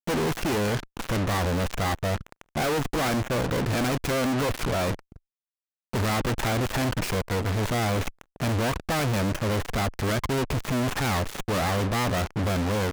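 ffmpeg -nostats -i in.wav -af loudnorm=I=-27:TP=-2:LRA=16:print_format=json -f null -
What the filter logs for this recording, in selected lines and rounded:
"input_i" : "-26.7",
"input_tp" : "-16.5",
"input_lra" : "1.4",
"input_thresh" : "-36.8",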